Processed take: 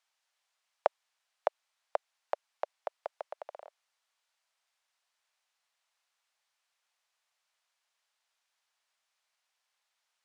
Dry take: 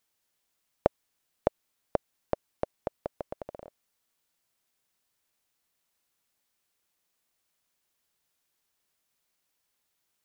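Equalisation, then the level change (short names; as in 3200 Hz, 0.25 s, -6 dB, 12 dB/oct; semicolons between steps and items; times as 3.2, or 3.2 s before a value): HPF 660 Hz 24 dB/oct; air absorption 69 m; +2.5 dB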